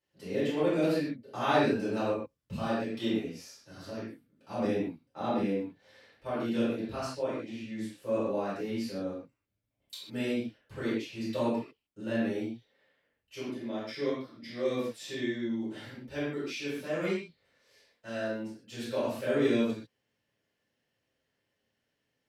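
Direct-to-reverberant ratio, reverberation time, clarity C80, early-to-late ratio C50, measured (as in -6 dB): -13.0 dB, no single decay rate, 2.5 dB, -0.5 dB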